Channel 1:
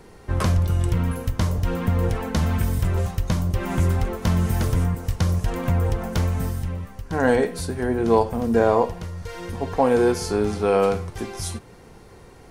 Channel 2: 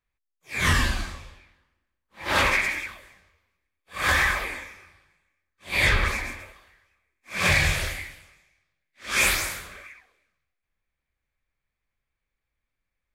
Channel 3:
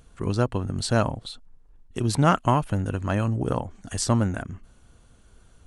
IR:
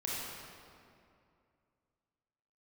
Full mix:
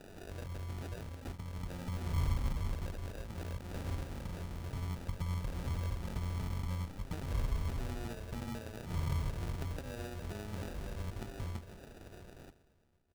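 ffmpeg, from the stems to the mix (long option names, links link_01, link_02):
-filter_complex "[0:a]acompressor=threshold=-22dB:ratio=4,volume=-4dB,asplit=2[link_01][link_02];[link_02]volume=-21dB[link_03];[1:a]adelay=1450,volume=-7.5dB,asplit=2[link_04][link_05];[link_05]volume=-4.5dB[link_06];[2:a]highpass=690,acompressor=threshold=-33dB:ratio=6,asoftclip=type=hard:threshold=-32.5dB,volume=0.5dB,asplit=2[link_07][link_08];[link_08]apad=whole_len=551255[link_09];[link_01][link_09]sidechaincompress=threshold=-52dB:ratio=8:attack=16:release=784[link_10];[link_10][link_04]amix=inputs=2:normalize=0,tremolo=f=98:d=0.71,acompressor=threshold=-32dB:ratio=6,volume=0dB[link_11];[3:a]atrim=start_sample=2205[link_12];[link_03][link_06]amix=inputs=2:normalize=0[link_13];[link_13][link_12]afir=irnorm=-1:irlink=0[link_14];[link_07][link_11][link_14]amix=inputs=3:normalize=0,equalizer=frequency=1800:width_type=o:width=0.33:gain=-8,acrossover=split=170[link_15][link_16];[link_16]acompressor=threshold=-46dB:ratio=5[link_17];[link_15][link_17]amix=inputs=2:normalize=0,acrusher=samples=41:mix=1:aa=0.000001"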